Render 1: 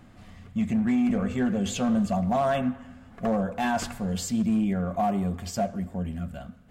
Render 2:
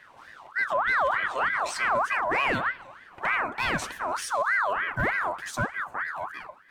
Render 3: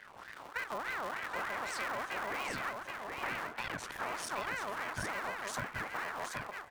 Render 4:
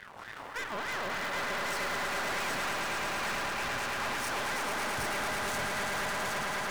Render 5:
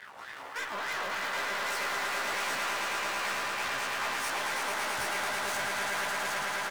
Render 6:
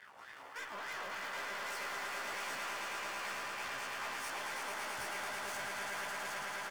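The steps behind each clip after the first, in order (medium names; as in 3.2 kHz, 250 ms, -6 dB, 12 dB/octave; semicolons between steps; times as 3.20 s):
ring modulator with a swept carrier 1.3 kHz, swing 40%, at 3.3 Hz; trim +1.5 dB
cycle switcher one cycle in 3, muted; compression 6:1, threshold -36 dBFS, peak gain reduction 13.5 dB; on a send: delay 775 ms -4 dB
echo with a slow build-up 110 ms, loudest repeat 5, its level -6.5 dB; Chebyshev shaper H 8 -17 dB, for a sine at -20 dBFS; saturation -34.5 dBFS, distortion -8 dB; trim +5 dB
bass shelf 300 Hz -12 dB; doubling 15 ms -3 dB
band-stop 3.9 kHz, Q 13; trim -8.5 dB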